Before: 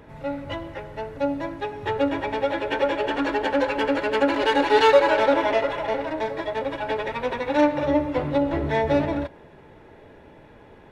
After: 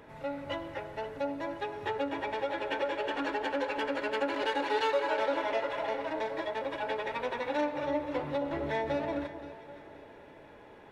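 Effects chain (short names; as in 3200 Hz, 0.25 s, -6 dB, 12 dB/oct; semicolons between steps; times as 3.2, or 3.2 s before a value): low shelf 210 Hz -10.5 dB; compressor 2:1, threshold -31 dBFS, peak gain reduction 10.5 dB; echo with dull and thin repeats by turns 0.261 s, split 1300 Hz, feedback 60%, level -10 dB; gain -2.5 dB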